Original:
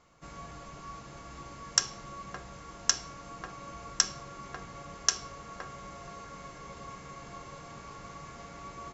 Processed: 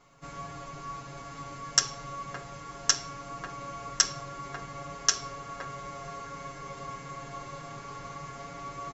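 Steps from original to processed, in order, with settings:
comb filter 7.2 ms, depth 95%

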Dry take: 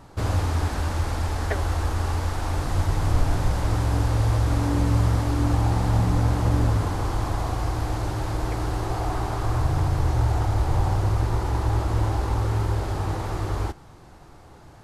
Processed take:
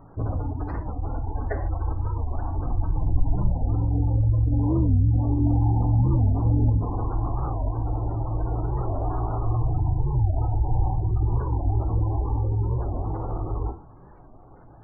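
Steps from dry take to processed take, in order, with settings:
gate on every frequency bin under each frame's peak −20 dB strong
parametric band 4,800 Hz −8.5 dB 2 octaves
reverb whose tail is shaped and stops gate 170 ms falling, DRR 5 dB
wow of a warped record 45 rpm, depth 250 cents
level −1.5 dB

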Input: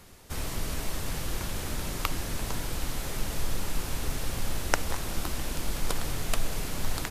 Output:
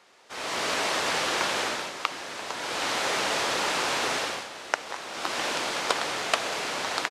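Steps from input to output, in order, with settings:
high-pass filter 550 Hz 12 dB per octave
automatic gain control gain up to 15.5 dB
high-frequency loss of the air 98 metres
downsampling to 32,000 Hz

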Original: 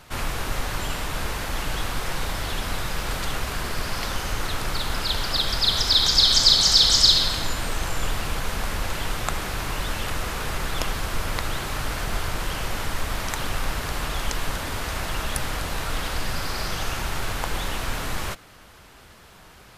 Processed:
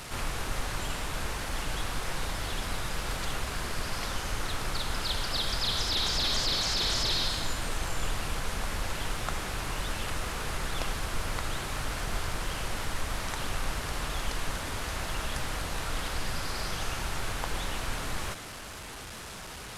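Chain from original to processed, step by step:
linear delta modulator 64 kbit/s, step −30.5 dBFS
level −5.5 dB

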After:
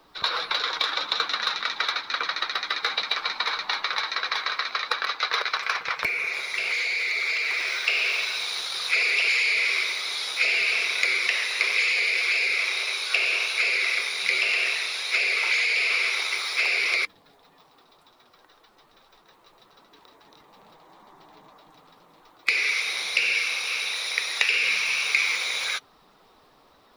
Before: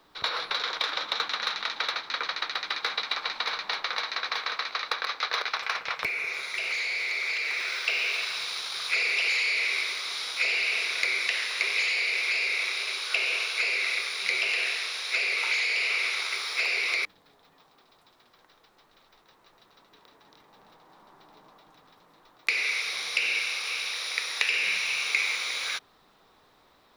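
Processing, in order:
spectral magnitudes quantised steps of 15 dB
level +4 dB

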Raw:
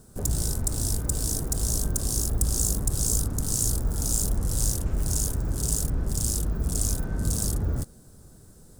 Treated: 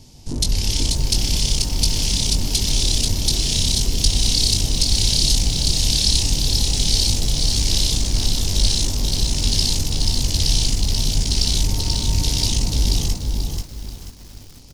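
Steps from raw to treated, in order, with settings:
change of speed 0.597×
double-tracking delay 21 ms −6 dB
feedback echo at a low word length 485 ms, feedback 35%, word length 8 bits, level −3 dB
level +6 dB

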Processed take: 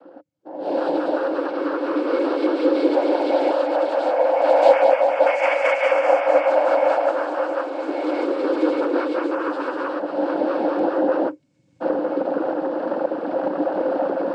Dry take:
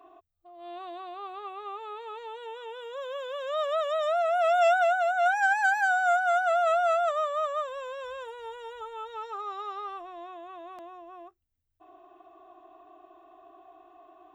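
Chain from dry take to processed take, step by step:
camcorder AGC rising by 14 dB per second
low-shelf EQ 410 Hz +9.5 dB
cochlear-implant simulation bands 8
hollow resonant body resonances 300/530/2,200 Hz, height 16 dB, ringing for 60 ms
level −1.5 dB

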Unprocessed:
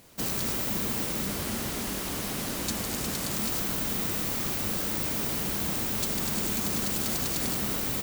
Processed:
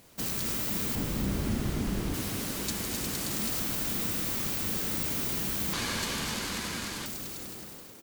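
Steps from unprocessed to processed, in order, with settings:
fade-out on the ending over 2.21 s
0:00.95–0:02.14: spectral tilt −2.5 dB per octave
echo with shifted repeats 265 ms, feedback 57%, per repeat +52 Hz, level −8 dB
dynamic equaliser 660 Hz, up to −4 dB, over −45 dBFS, Q 0.72
0:05.73–0:07.06: linearly interpolated sample-rate reduction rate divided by 2×
level −2 dB

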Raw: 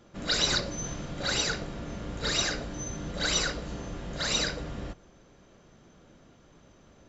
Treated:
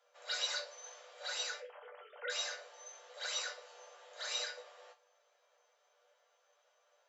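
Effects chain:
0:01.60–0:02.30: three sine waves on the formant tracks
Butterworth high-pass 480 Hz 72 dB per octave
resonators tuned to a chord G2 major, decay 0.22 s

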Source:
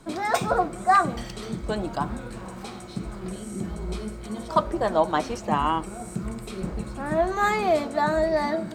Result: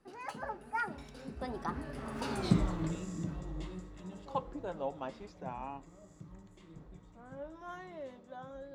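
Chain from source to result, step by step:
source passing by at 0:02.48, 56 m/s, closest 8.8 metres
high-shelf EQ 6,300 Hz −9 dB
level +6 dB

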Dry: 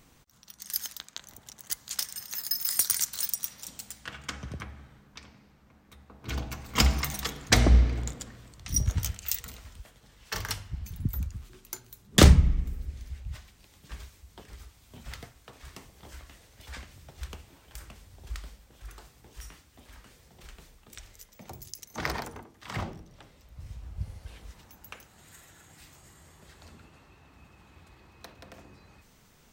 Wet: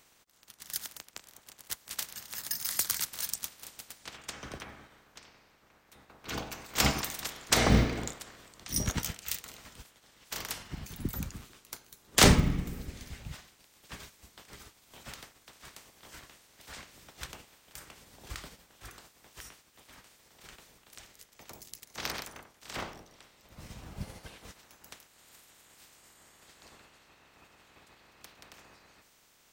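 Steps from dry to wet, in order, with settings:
ceiling on every frequency bin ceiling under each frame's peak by 20 dB
floating-point word with a short mantissa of 4 bits
level −4.5 dB

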